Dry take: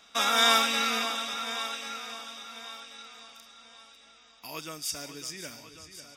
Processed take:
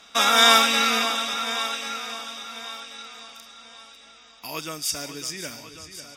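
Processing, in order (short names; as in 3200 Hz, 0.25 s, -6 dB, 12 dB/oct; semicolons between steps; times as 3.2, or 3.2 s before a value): added harmonics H 2 -29 dB, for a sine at -8 dBFS; gain +6.5 dB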